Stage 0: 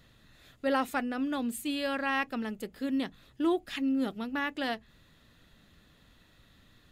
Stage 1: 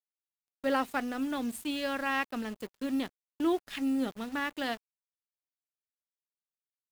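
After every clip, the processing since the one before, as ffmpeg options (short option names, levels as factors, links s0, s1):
-af "aeval=exprs='sgn(val(0))*max(abs(val(0))-0.00422,0)':c=same,agate=range=0.251:threshold=0.00355:ratio=16:detection=peak,acrusher=bits=9:dc=4:mix=0:aa=0.000001"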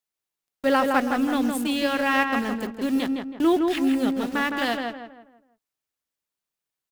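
-filter_complex "[0:a]asplit=2[s0][s1];[s1]adelay=162,lowpass=f=2200:p=1,volume=0.668,asplit=2[s2][s3];[s3]adelay=162,lowpass=f=2200:p=1,volume=0.38,asplit=2[s4][s5];[s5]adelay=162,lowpass=f=2200:p=1,volume=0.38,asplit=2[s6][s7];[s7]adelay=162,lowpass=f=2200:p=1,volume=0.38,asplit=2[s8][s9];[s9]adelay=162,lowpass=f=2200:p=1,volume=0.38[s10];[s0][s2][s4][s6][s8][s10]amix=inputs=6:normalize=0,volume=2.51"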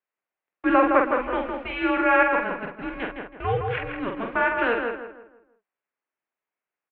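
-filter_complex "[0:a]asplit=2[s0][s1];[s1]adelay=47,volume=0.562[s2];[s0][s2]amix=inputs=2:normalize=0,highpass=f=540:t=q:w=0.5412,highpass=f=540:t=q:w=1.307,lowpass=f=2700:t=q:w=0.5176,lowpass=f=2700:t=q:w=0.7071,lowpass=f=2700:t=q:w=1.932,afreqshift=-240,volume=1.5"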